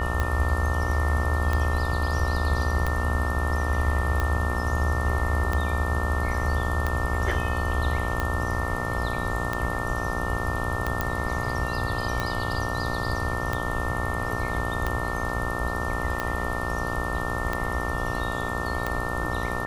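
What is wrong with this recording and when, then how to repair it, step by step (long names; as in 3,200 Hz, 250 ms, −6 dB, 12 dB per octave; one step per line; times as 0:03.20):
mains buzz 60 Hz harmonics 23 −31 dBFS
scratch tick 45 rpm −13 dBFS
whistle 1,800 Hz −32 dBFS
0:11.01: click −11 dBFS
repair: click removal
notch filter 1,800 Hz, Q 30
hum removal 60 Hz, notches 23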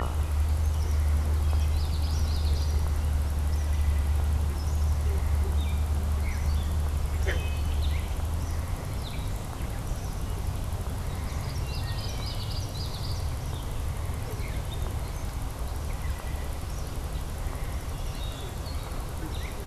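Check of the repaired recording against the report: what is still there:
none of them is left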